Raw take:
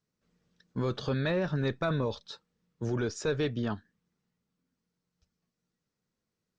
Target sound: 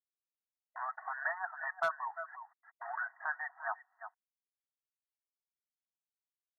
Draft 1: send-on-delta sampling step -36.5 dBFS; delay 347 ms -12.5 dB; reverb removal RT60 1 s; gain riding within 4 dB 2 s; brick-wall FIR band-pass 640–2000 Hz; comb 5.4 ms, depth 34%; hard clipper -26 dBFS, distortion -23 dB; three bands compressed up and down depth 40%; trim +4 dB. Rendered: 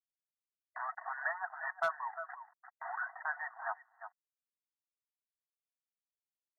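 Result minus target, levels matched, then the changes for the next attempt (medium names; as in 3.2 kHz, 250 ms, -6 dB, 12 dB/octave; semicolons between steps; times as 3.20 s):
send-on-delta sampling: distortion +7 dB
change: send-on-delta sampling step -43 dBFS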